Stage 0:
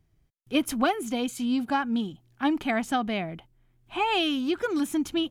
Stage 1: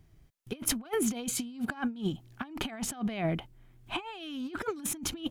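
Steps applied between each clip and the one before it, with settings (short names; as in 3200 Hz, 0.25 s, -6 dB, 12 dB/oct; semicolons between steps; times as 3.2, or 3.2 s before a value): negative-ratio compressor -33 dBFS, ratio -0.5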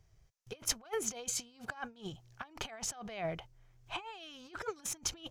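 EQ curve 120 Hz 0 dB, 260 Hz -15 dB, 470 Hz +2 dB, 3600 Hz 0 dB, 6000 Hz +9 dB, 9800 Hz -4 dB; gain -5.5 dB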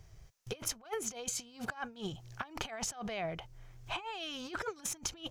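compressor 5:1, threshold -46 dBFS, peak gain reduction 17 dB; gain +10 dB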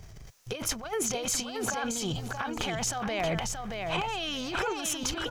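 transient shaper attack -4 dB, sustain +9 dB; on a send: feedback echo 0.627 s, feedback 16%, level -4.5 dB; on the sum: gain +7.5 dB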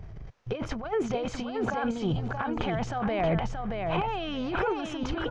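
tape spacing loss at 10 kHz 39 dB; gain +6 dB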